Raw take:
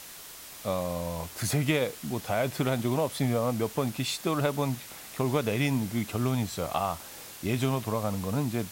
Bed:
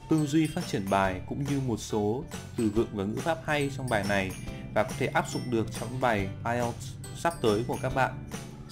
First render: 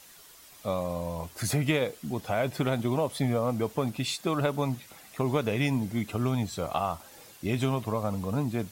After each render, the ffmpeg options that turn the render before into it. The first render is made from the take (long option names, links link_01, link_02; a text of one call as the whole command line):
ffmpeg -i in.wav -af "afftdn=noise_reduction=9:noise_floor=-45" out.wav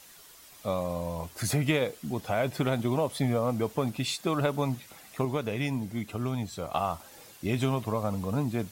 ffmpeg -i in.wav -filter_complex "[0:a]asplit=3[link_01][link_02][link_03];[link_01]atrim=end=5.252[link_04];[link_02]atrim=start=5.248:end=6.742,asetpts=PTS-STARTPTS,volume=-3.5dB[link_05];[link_03]atrim=start=6.738[link_06];[link_04][link_05]acrossfade=duration=0.004:curve1=hsin:curve2=hsin[link_07];[link_07][link_06]acrossfade=duration=0.004:curve1=hsin:curve2=hsin" out.wav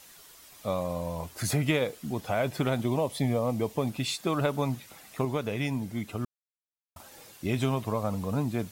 ffmpeg -i in.wav -filter_complex "[0:a]asettb=1/sr,asplit=3[link_01][link_02][link_03];[link_01]atrim=end=2.854[link_04];[link_02]atrim=start=2.85:end=3.9,asetpts=PTS-STARTPTS,afade=type=in:duration=0.004:curve=qsin,afade=type=out:start_time=1.046:duration=0.004:curve=qsin,equalizer=frequency=1400:width_type=o:width=0.37:gain=-10[link_05];[link_03]atrim=start=3.896[link_06];[link_04][link_05]acrossfade=duration=0.004:curve1=hsin:curve2=qsin[link_07];[link_07][link_06]acrossfade=duration=0.004:curve1=qsin:curve2=hsin,asplit=3[link_08][link_09][link_10];[link_08]atrim=end=6.25,asetpts=PTS-STARTPTS,afade=type=out:start_time=6.246:duration=0.004:curve=hsin[link_11];[link_09]atrim=start=6.25:end=6.96,asetpts=PTS-STARTPTS,volume=0[link_12];[link_10]atrim=start=6.96,asetpts=PTS-STARTPTS,afade=type=in:duration=0.004:curve=hsin[link_13];[link_11][link_12][link_13]concat=n=3:v=0:a=1" out.wav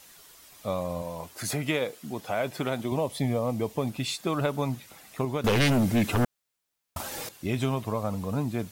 ffmpeg -i in.wav -filter_complex "[0:a]asettb=1/sr,asplit=3[link_01][link_02][link_03];[link_01]atrim=end=1.024[link_04];[link_02]atrim=start=1.02:end=2.92,asetpts=PTS-STARTPTS,afade=type=in:duration=0.004:curve=qsin,afade=type=out:start_time=1.896:duration=0.004:curve=qsin,highpass=frequency=220:poles=1[link_05];[link_03]atrim=start=2.916[link_06];[link_04][link_05]acrossfade=duration=0.004:curve1=hsin:curve2=qsin[link_07];[link_07][link_06]acrossfade=duration=0.004:curve1=qsin:curve2=hsin,asettb=1/sr,asplit=3[link_08][link_09][link_10];[link_08]atrim=end=5.444[link_11];[link_09]atrim=start=5.44:end=7.29,asetpts=PTS-STARTPTS,afade=type=in:duration=0.004:curve=qsin,afade=type=out:start_time=1.846:duration=0.004:curve=qsin,aeval=exprs='0.119*sin(PI/2*3.16*val(0)/0.119)':channel_layout=same[link_12];[link_10]atrim=start=7.286[link_13];[link_11][link_12]acrossfade=duration=0.004:curve1=hsin:curve2=qsin[link_14];[link_14][link_13]acrossfade=duration=0.004:curve1=qsin:curve2=hsin" out.wav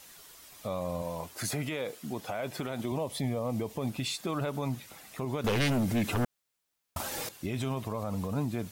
ffmpeg -i in.wav -af "alimiter=limit=-23.5dB:level=0:latency=1:release=65" out.wav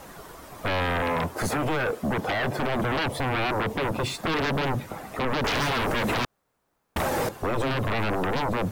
ffmpeg -i in.wav -filter_complex "[0:a]acrossover=split=1400[link_01][link_02];[link_01]aeval=exprs='0.075*sin(PI/2*5.62*val(0)/0.075)':channel_layout=same[link_03];[link_02]acrusher=bits=3:mode=log:mix=0:aa=0.000001[link_04];[link_03][link_04]amix=inputs=2:normalize=0" out.wav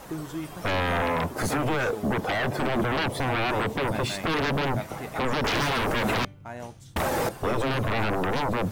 ffmpeg -i in.wav -i bed.wav -filter_complex "[1:a]volume=-9.5dB[link_01];[0:a][link_01]amix=inputs=2:normalize=0" out.wav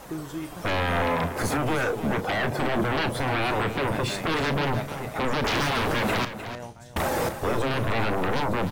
ffmpeg -i in.wav -filter_complex "[0:a]asplit=2[link_01][link_02];[link_02]adelay=35,volume=-12.5dB[link_03];[link_01][link_03]amix=inputs=2:normalize=0,aecho=1:1:304:0.266" out.wav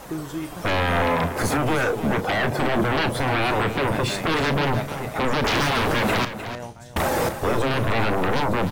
ffmpeg -i in.wav -af "volume=3.5dB" out.wav